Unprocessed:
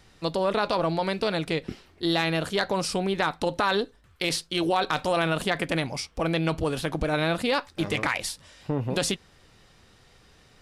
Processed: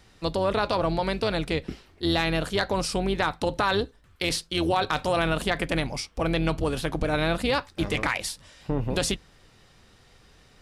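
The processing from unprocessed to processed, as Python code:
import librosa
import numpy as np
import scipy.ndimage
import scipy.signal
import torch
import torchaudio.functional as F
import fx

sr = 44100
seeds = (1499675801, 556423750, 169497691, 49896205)

y = fx.octave_divider(x, sr, octaves=2, level_db=-4.0)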